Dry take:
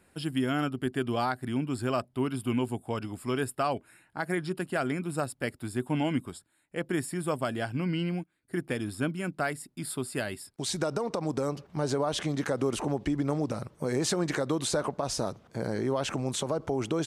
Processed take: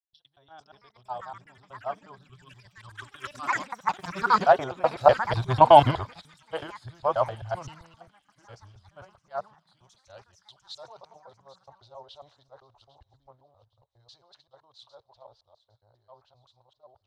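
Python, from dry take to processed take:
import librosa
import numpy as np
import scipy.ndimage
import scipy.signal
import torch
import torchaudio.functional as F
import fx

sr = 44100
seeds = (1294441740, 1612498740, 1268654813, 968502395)

p1 = fx.local_reverse(x, sr, ms=127.0)
p2 = fx.doppler_pass(p1, sr, speed_mps=17, closest_m=9.3, pass_at_s=5.66)
p3 = fx.notch(p2, sr, hz=460.0, q=14.0)
p4 = fx.spec_box(p3, sr, start_s=2.23, length_s=2.12, low_hz=410.0, high_hz=1000.0, gain_db=-15)
p5 = fx.curve_eq(p4, sr, hz=(120.0, 170.0, 300.0, 620.0, 930.0, 2200.0, 3900.0, 8000.0), db=(0, -19, -17, 7, 9, -13, 6, -26))
p6 = fx.level_steps(p5, sr, step_db=10)
p7 = p5 + (p6 * librosa.db_to_amplitude(1.5))
p8 = fx.vibrato(p7, sr, rate_hz=0.57, depth_cents=46.0)
p9 = fx.echo_pitch(p8, sr, ms=493, semitones=7, count=2, db_per_echo=-6.0)
p10 = p9 + fx.echo_wet_highpass(p9, sr, ms=808, feedback_pct=52, hz=3200.0, wet_db=-8.5, dry=0)
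p11 = fx.band_widen(p10, sr, depth_pct=100)
y = p11 * librosa.db_to_amplitude(1.5)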